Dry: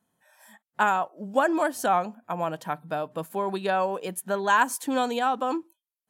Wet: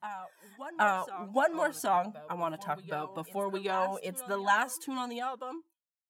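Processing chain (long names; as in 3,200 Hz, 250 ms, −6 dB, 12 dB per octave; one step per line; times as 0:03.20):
fade-out on the ending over 1.64 s
backwards echo 768 ms −14.5 dB
flanger whose copies keep moving one way falling 1.6 Hz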